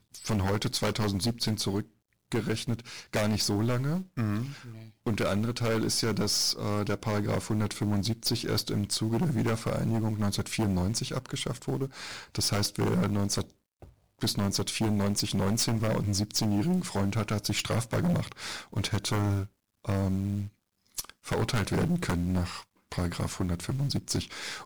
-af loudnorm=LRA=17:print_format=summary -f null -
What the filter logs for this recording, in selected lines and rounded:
Input Integrated:    -29.9 LUFS
Input True Peak:     -19.0 dBTP
Input LRA:             3.0 LU
Input Threshold:     -40.2 LUFS